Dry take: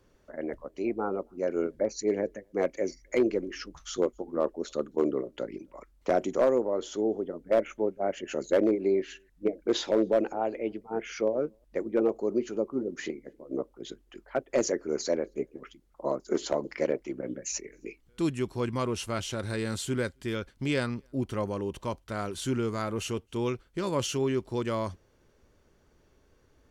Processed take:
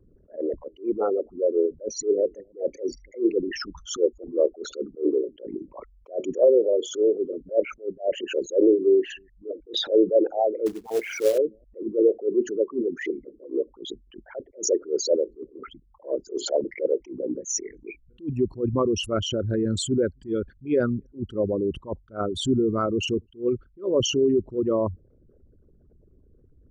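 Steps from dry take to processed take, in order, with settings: formant sharpening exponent 3; 10.66–11.38 short-mantissa float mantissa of 2-bit; attack slew limiter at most 250 dB/s; gain +7.5 dB

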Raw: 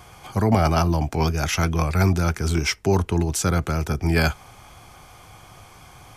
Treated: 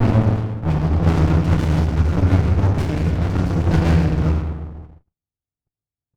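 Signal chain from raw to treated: slices in reverse order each 0.103 s, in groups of 6; LPF 4200 Hz 12 dB/oct; FDN reverb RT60 1.1 s, low-frequency decay 1.55×, high-frequency decay 0.9×, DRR -2 dB; low-pass opened by the level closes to 460 Hz, open at -10.5 dBFS; gate -35 dBFS, range -49 dB; running maximum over 65 samples

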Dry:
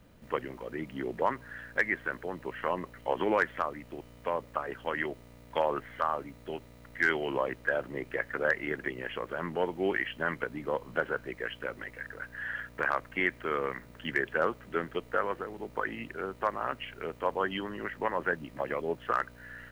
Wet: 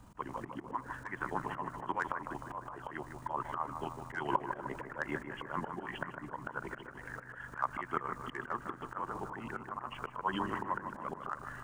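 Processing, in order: granular stretch 0.59×, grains 76 ms; auto swell 0.226 s; ten-band EQ 500 Hz -11 dB, 1000 Hz +11 dB, 2000 Hz -9 dB, 4000 Hz -5 dB, 8000 Hz +9 dB, 16000 Hz -9 dB; on a send: analogue delay 0.153 s, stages 2048, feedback 59%, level -7.5 dB; on the sum: gain +4 dB

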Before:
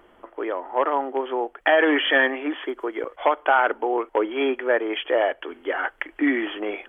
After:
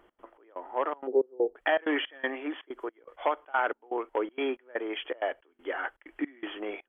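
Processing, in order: 1.07–1.56 synth low-pass 450 Hz, resonance Q 4.9; step gate "x.xx..xxx" 161 bpm -24 dB; gain -7.5 dB

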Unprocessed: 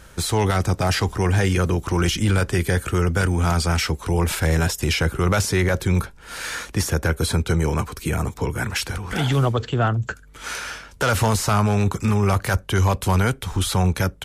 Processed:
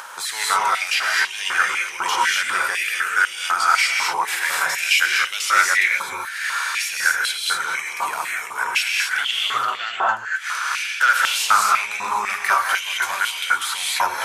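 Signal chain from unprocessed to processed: non-linear reverb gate 0.28 s rising, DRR -3 dB; upward compressor, threshold -24 dBFS; stepped high-pass 4 Hz 970–2900 Hz; gain -2 dB

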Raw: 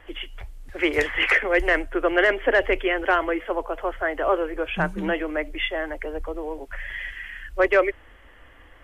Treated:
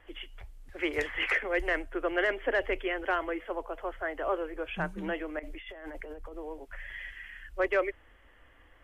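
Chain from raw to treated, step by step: 5.39–6.33 negative-ratio compressor -34 dBFS, ratio -1; gain -9 dB

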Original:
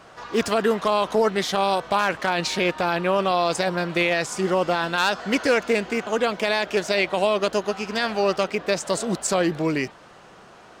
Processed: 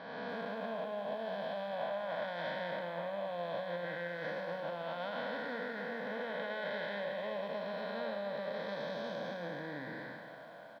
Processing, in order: time blur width 0.514 s; limiter -18.5 dBFS, peak gain reduction 5 dB; compressor 16:1, threshold -31 dBFS, peak gain reduction 8 dB; fixed phaser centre 1900 Hz, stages 8; formant shift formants -3 st; BPF 250–2700 Hz; doubler 40 ms -13.5 dB; echo 0.25 s -18 dB; lo-fi delay 0.288 s, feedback 55%, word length 11-bit, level -13 dB; gain +1 dB

